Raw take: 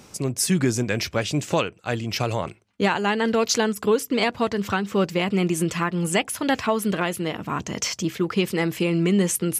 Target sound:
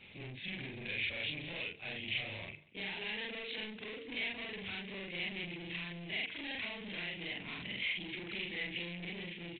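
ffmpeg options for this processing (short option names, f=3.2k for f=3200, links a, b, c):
-filter_complex "[0:a]afftfilt=real='re':imag='-im':win_size=4096:overlap=0.75,bandreject=f=50:t=h:w=6,bandreject=f=100:t=h:w=6,bandreject=f=150:t=h:w=6,bandreject=f=200:t=h:w=6,bandreject=f=250:t=h:w=6,bandreject=f=300:t=h:w=6,bandreject=f=350:t=h:w=6,bandreject=f=400:t=h:w=6,bandreject=f=450:t=h:w=6,acompressor=threshold=-27dB:ratio=10,aresample=8000,asoftclip=type=tanh:threshold=-37.5dB,aresample=44100,highshelf=f=1.7k:t=q:w=3:g=9.5,asplit=2[a][b];[b]aecho=0:1:189:0.0841[c];[a][c]amix=inputs=2:normalize=0,volume=-6.5dB"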